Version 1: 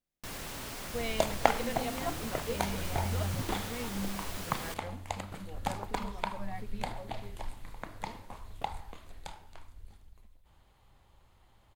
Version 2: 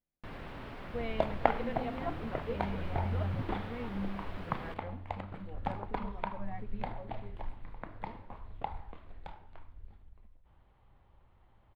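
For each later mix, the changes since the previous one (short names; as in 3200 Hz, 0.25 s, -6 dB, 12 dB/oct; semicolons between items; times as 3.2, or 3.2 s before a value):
master: add air absorption 470 m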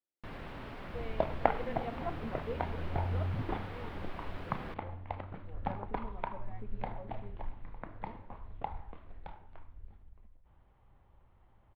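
speech: add ladder high-pass 280 Hz, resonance 45%; second sound: add air absorption 200 m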